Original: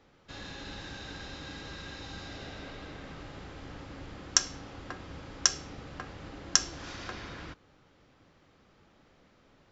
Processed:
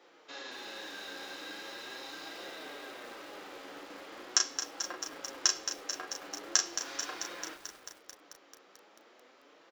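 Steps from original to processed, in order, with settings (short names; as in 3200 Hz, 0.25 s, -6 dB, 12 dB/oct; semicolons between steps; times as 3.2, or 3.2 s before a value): HPF 320 Hz 24 dB/oct; in parallel at +2 dB: compressor 6:1, threshold -54 dBFS, peak gain reduction 33 dB; on the sum: vibrato 13 Hz 12 cents; flange 0.41 Hz, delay 5.5 ms, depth 5.8 ms, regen -14%; doubler 35 ms -5 dB; on a send: echo 0.435 s -18.5 dB; on the sum: lo-fi delay 0.22 s, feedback 80%, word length 8-bit, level -9 dB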